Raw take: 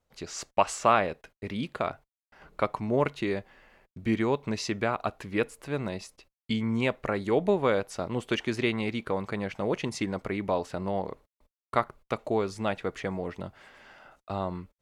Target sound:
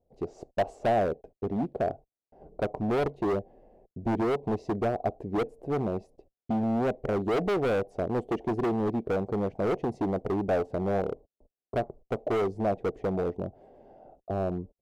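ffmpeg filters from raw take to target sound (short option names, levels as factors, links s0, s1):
-af "firequalizer=gain_entry='entry(160,0);entry(420,6);entry(1300,-28)':delay=0.05:min_phase=1,volume=25.1,asoftclip=hard,volume=0.0398,equalizer=f=730:w=3.7:g=10,volume=1.41"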